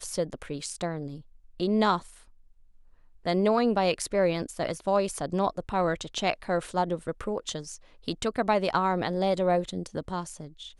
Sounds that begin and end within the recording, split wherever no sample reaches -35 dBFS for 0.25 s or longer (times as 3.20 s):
1.60–1.99 s
3.26–7.76 s